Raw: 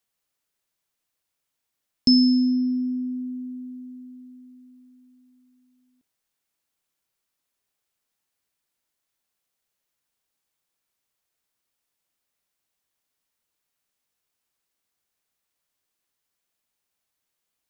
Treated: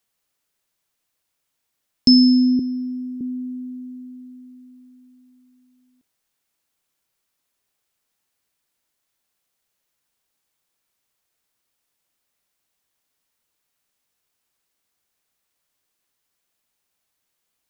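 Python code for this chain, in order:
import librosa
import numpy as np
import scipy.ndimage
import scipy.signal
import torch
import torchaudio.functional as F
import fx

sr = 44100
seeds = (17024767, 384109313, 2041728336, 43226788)

y = fx.highpass(x, sr, hz=320.0, slope=12, at=(2.59, 3.21))
y = F.gain(torch.from_numpy(y), 4.5).numpy()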